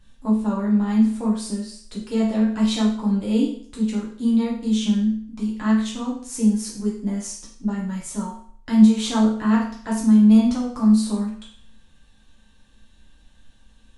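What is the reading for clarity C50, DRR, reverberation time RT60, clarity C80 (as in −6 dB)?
4.0 dB, −6.0 dB, 0.55 s, 8.5 dB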